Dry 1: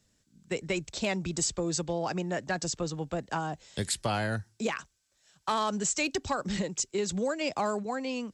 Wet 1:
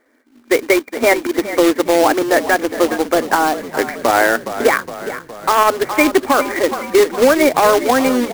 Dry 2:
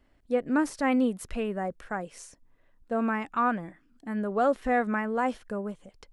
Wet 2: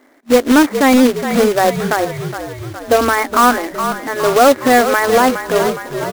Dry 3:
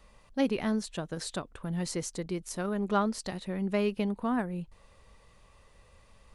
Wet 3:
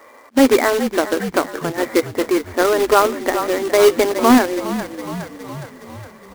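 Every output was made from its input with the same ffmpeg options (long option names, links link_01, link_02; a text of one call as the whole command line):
ffmpeg -i in.wav -filter_complex "[0:a]afftfilt=real='re*between(b*sr/4096,230,2400)':imag='im*between(b*sr/4096,230,2400)':win_size=4096:overlap=0.75,acontrast=52,acrusher=bits=2:mode=log:mix=0:aa=0.000001,asplit=2[link_01][link_02];[link_02]asplit=7[link_03][link_04][link_05][link_06][link_07][link_08][link_09];[link_03]adelay=414,afreqshift=-36,volume=-13dB[link_10];[link_04]adelay=828,afreqshift=-72,volume=-17.2dB[link_11];[link_05]adelay=1242,afreqshift=-108,volume=-21.3dB[link_12];[link_06]adelay=1656,afreqshift=-144,volume=-25.5dB[link_13];[link_07]adelay=2070,afreqshift=-180,volume=-29.6dB[link_14];[link_08]adelay=2484,afreqshift=-216,volume=-33.8dB[link_15];[link_09]adelay=2898,afreqshift=-252,volume=-37.9dB[link_16];[link_10][link_11][link_12][link_13][link_14][link_15][link_16]amix=inputs=7:normalize=0[link_17];[link_01][link_17]amix=inputs=2:normalize=0,alimiter=level_in=14dB:limit=-1dB:release=50:level=0:latency=1,volume=-1dB" out.wav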